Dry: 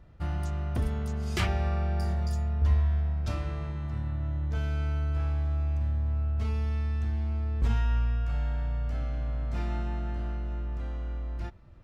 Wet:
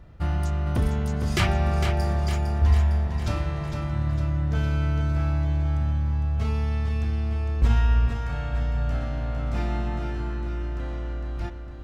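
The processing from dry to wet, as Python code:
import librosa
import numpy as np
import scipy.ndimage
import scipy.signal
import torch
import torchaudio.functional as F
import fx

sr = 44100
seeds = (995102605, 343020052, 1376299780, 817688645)

y = fx.echo_feedback(x, sr, ms=456, feedback_pct=56, wet_db=-7)
y = F.gain(torch.from_numpy(y), 6.0).numpy()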